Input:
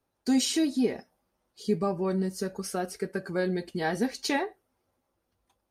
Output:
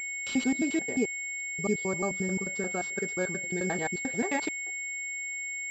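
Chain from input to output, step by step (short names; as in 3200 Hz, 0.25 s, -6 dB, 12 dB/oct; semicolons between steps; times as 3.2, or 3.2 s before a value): slices in reverse order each 88 ms, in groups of 3; whine 2200 Hz -31 dBFS; pulse-width modulation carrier 7500 Hz; gain -2.5 dB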